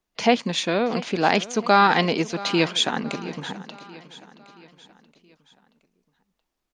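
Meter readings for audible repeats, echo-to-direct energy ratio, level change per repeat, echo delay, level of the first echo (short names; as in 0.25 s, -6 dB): 3, -16.5 dB, -6.5 dB, 0.675 s, -17.5 dB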